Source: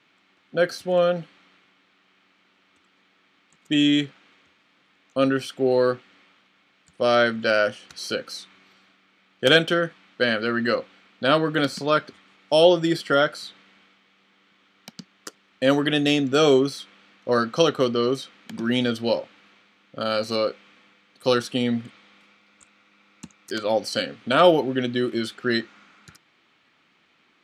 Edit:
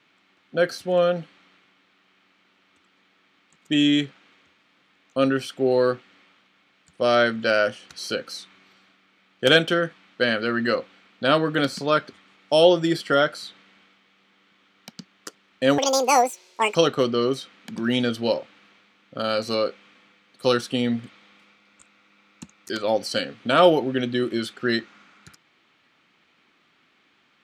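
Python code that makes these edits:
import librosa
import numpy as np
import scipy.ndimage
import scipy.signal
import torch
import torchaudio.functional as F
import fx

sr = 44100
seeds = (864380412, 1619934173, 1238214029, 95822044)

y = fx.edit(x, sr, fx.speed_span(start_s=15.78, length_s=1.78, speed=1.84), tone=tone)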